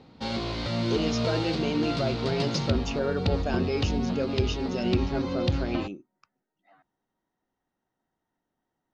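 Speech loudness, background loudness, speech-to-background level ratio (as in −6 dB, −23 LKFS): −31.5 LKFS, −29.5 LKFS, −2.0 dB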